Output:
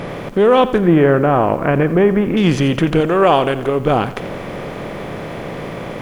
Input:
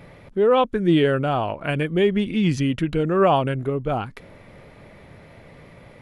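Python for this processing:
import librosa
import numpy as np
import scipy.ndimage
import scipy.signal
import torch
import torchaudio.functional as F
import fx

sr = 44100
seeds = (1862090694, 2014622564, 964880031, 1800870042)

y = fx.bin_compress(x, sr, power=0.6)
y = fx.lowpass(y, sr, hz=2100.0, slope=24, at=(0.78, 2.37))
y = fx.peak_eq(y, sr, hz=150.0, db=-7.5, octaves=1.7, at=(3.0, 3.8))
y = fx.echo_crushed(y, sr, ms=86, feedback_pct=55, bits=7, wet_db=-15)
y = y * 10.0 ** (4.0 / 20.0)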